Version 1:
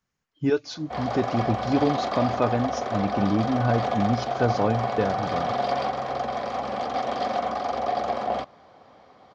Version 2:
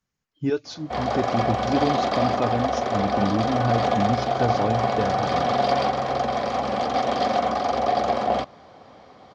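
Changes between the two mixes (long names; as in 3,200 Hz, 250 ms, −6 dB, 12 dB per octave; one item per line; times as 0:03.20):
background +7.0 dB
master: add parametric band 1,100 Hz −3.5 dB 2.7 octaves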